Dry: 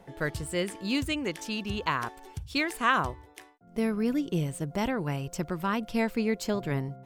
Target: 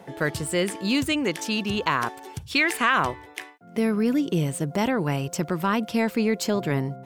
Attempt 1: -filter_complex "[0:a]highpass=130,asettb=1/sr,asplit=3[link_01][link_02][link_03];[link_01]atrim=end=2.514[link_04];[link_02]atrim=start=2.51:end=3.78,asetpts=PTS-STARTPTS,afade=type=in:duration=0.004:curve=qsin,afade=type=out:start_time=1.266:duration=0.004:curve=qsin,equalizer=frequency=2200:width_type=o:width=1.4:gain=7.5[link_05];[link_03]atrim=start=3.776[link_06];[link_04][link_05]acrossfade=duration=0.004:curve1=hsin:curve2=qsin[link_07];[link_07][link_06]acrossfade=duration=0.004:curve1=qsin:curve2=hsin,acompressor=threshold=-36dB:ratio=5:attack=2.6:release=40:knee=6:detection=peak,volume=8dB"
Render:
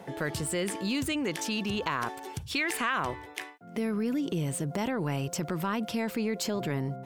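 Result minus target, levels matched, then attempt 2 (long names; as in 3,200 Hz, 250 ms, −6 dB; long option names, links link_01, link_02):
downward compressor: peak gain reduction +8.5 dB
-filter_complex "[0:a]highpass=130,asettb=1/sr,asplit=3[link_01][link_02][link_03];[link_01]atrim=end=2.514[link_04];[link_02]atrim=start=2.51:end=3.78,asetpts=PTS-STARTPTS,afade=type=in:duration=0.004:curve=qsin,afade=type=out:start_time=1.266:duration=0.004:curve=qsin,equalizer=frequency=2200:width_type=o:width=1.4:gain=7.5[link_05];[link_03]atrim=start=3.776[link_06];[link_04][link_05]acrossfade=duration=0.004:curve1=hsin:curve2=qsin[link_07];[link_07][link_06]acrossfade=duration=0.004:curve1=qsin:curve2=hsin,acompressor=threshold=-25.5dB:ratio=5:attack=2.6:release=40:knee=6:detection=peak,volume=8dB"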